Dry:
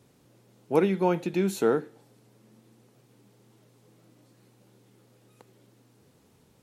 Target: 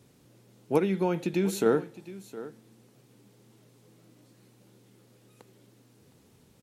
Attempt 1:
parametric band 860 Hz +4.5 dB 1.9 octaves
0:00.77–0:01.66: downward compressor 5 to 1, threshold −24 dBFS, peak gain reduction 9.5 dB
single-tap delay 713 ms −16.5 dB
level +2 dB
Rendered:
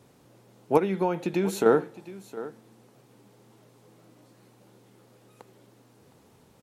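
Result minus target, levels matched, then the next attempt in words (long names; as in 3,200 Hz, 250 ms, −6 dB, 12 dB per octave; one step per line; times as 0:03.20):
1,000 Hz band +4.0 dB
parametric band 860 Hz −3.5 dB 1.9 octaves
0:00.77–0:01.66: downward compressor 5 to 1, threshold −24 dBFS, peak gain reduction 6 dB
single-tap delay 713 ms −16.5 dB
level +2 dB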